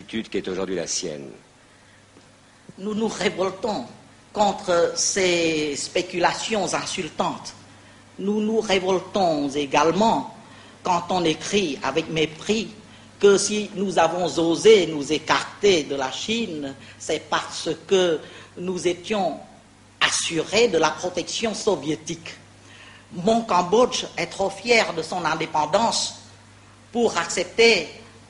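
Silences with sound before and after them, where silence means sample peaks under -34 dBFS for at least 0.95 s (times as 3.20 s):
1.33–2.69 s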